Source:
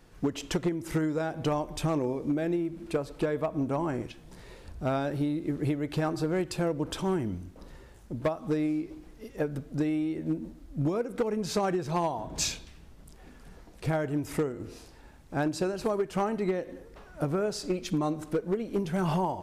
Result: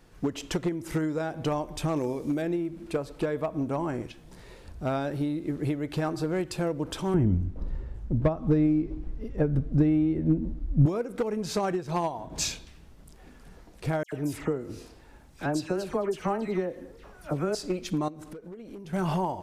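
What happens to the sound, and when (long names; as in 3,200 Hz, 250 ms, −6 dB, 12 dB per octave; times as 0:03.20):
0:01.96–0:02.42: high-shelf EQ 3,600 Hz +10.5 dB
0:07.14–0:10.86: RIAA equalisation playback
0:11.72–0:12.32: transient designer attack +1 dB, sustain −5 dB
0:14.03–0:17.55: all-pass dispersion lows, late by 94 ms, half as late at 2,200 Hz
0:18.08–0:18.93: downward compressor 8 to 1, threshold −39 dBFS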